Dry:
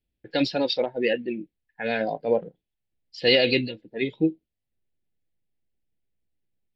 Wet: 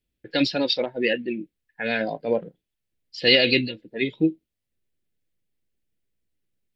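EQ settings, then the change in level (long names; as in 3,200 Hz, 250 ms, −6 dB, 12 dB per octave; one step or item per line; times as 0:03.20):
low-shelf EQ 200 Hz −4 dB
dynamic equaliser 470 Hz, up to −4 dB, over −37 dBFS, Q 2.4
parametric band 800 Hz −6.5 dB 0.59 octaves
+4.0 dB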